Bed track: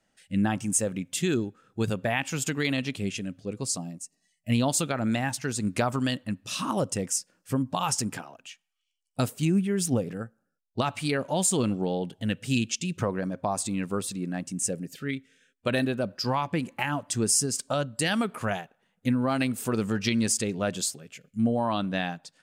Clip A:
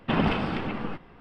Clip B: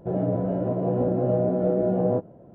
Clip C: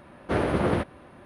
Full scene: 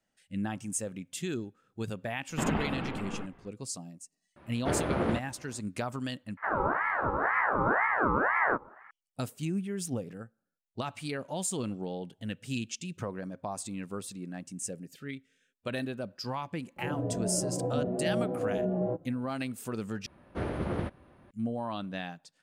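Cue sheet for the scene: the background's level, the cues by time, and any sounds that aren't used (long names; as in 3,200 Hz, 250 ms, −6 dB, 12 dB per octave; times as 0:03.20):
bed track −8.5 dB
0:02.29: mix in A −6 dB + low-pass filter 2,900 Hz
0:04.36: mix in C −5.5 dB + high-shelf EQ 7,600 Hz −7.5 dB
0:06.37: overwrite with B −1.5 dB + ring modulator whose carrier an LFO sweeps 1,100 Hz, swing 40%, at 2 Hz
0:16.76: mix in B −5 dB + barber-pole flanger 3.2 ms −1.4 Hz
0:20.06: overwrite with C −11 dB + low-shelf EQ 190 Hz +7 dB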